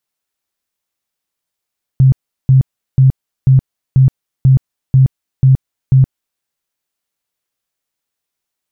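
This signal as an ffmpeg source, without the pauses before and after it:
-f lavfi -i "aevalsrc='0.631*sin(2*PI*132*mod(t,0.49))*lt(mod(t,0.49),16/132)':d=4.41:s=44100"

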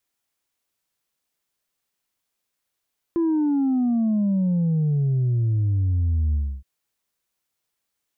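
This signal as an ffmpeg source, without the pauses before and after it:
-f lavfi -i "aevalsrc='0.119*clip((3.47-t)/0.29,0,1)*tanh(1.19*sin(2*PI*340*3.47/log(65/340)*(exp(log(65/340)*t/3.47)-1)))/tanh(1.19)':d=3.47:s=44100"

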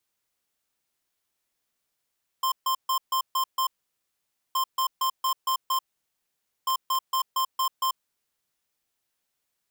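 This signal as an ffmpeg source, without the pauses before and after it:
-f lavfi -i "aevalsrc='0.0596*(2*lt(mod(1050*t,1),0.5)-1)*clip(min(mod(mod(t,2.12),0.23),0.09-mod(mod(t,2.12),0.23))/0.005,0,1)*lt(mod(t,2.12),1.38)':d=6.36:s=44100"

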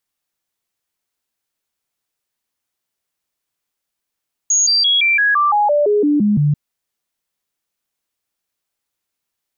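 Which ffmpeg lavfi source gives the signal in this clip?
-f lavfi -i "aevalsrc='0.282*clip(min(mod(t,0.17),0.17-mod(t,0.17))/0.005,0,1)*sin(2*PI*6650*pow(2,-floor(t/0.17)/2)*mod(t,0.17))':d=2.04:s=44100"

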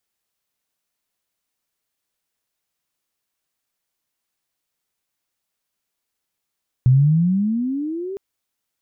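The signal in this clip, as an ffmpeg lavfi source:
-f lavfi -i "aevalsrc='pow(10,(-9-17*t/1.31)/20)*sin(2*PI*123*1.31/(20.5*log(2)/12)*(exp(20.5*log(2)/12*t/1.31)-1))':d=1.31:s=44100"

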